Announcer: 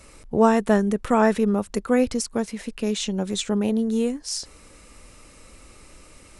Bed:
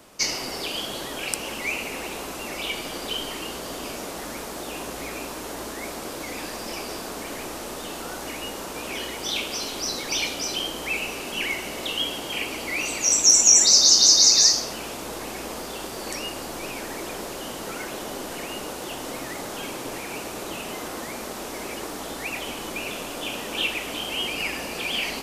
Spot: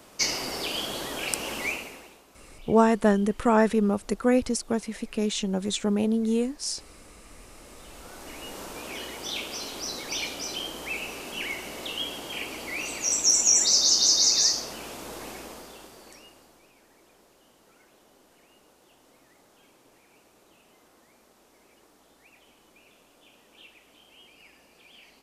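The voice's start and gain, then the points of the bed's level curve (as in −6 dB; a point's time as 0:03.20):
2.35 s, −2.0 dB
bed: 0:01.66 −1 dB
0:02.24 −23 dB
0:07.24 −23 dB
0:08.59 −5.5 dB
0:15.29 −5.5 dB
0:16.71 −26 dB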